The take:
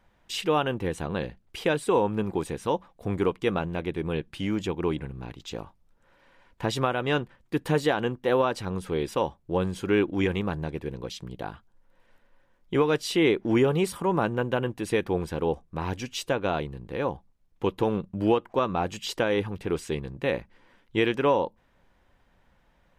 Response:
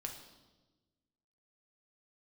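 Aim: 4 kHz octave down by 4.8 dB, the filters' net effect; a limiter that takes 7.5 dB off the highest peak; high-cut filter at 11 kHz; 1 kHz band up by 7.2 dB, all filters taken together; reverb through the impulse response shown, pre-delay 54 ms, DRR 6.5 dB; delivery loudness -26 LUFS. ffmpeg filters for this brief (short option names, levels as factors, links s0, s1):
-filter_complex "[0:a]lowpass=11000,equalizer=f=1000:t=o:g=9,equalizer=f=4000:t=o:g=-7.5,alimiter=limit=0.211:level=0:latency=1,asplit=2[s0][s1];[1:a]atrim=start_sample=2205,adelay=54[s2];[s1][s2]afir=irnorm=-1:irlink=0,volume=0.596[s3];[s0][s3]amix=inputs=2:normalize=0,volume=1.06"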